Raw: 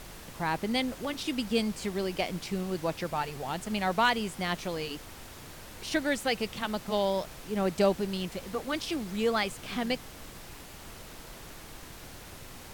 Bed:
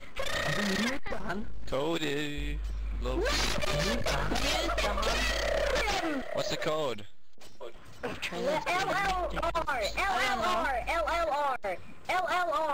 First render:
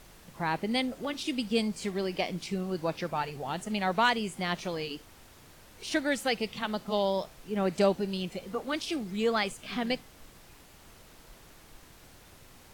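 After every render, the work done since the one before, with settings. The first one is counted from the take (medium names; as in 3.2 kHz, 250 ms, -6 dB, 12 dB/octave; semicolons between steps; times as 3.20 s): noise print and reduce 8 dB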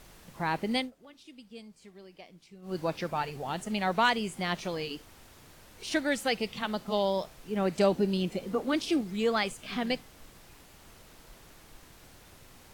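0.77–2.76 s: dip -19 dB, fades 0.14 s; 7.92–9.01 s: peaking EQ 280 Hz +6.5 dB 1.8 oct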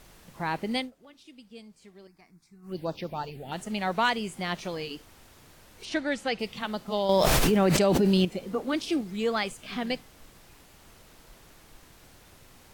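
2.07–3.52 s: touch-sensitive phaser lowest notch 470 Hz, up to 2.3 kHz, full sweep at -26.5 dBFS; 5.85–6.39 s: distance through air 66 m; 7.09–8.25 s: level flattener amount 100%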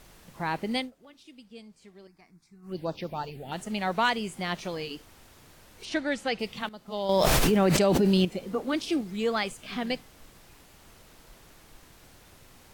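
1.43–3.01 s: treble shelf 12 kHz -6 dB; 6.69–7.24 s: fade in, from -16 dB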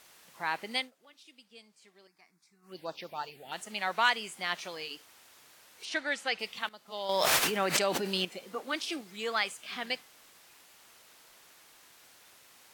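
high-pass 1.2 kHz 6 dB/octave; dynamic bell 1.6 kHz, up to +3 dB, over -40 dBFS, Q 0.76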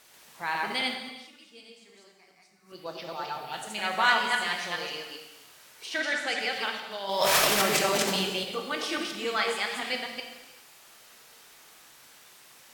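chunks repeated in reverse 136 ms, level -1 dB; gated-style reverb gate 440 ms falling, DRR 2.5 dB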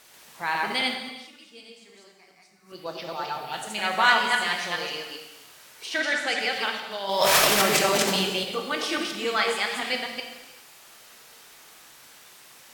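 trim +3.5 dB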